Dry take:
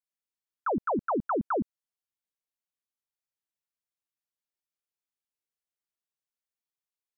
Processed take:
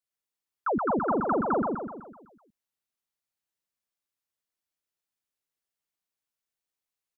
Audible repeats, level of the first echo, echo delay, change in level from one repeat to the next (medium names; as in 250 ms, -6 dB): 6, -3.5 dB, 126 ms, -6.0 dB